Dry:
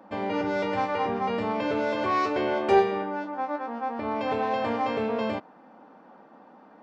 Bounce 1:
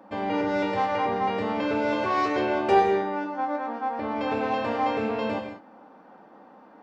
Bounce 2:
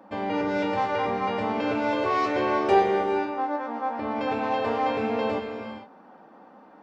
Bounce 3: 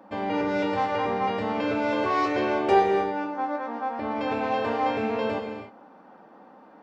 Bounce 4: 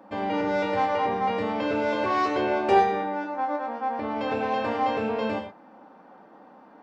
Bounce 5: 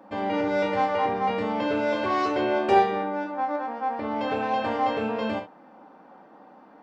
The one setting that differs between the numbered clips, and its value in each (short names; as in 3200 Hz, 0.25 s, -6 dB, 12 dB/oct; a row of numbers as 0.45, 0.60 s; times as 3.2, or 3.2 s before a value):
non-linear reverb, gate: 220, 490, 330, 140, 90 ms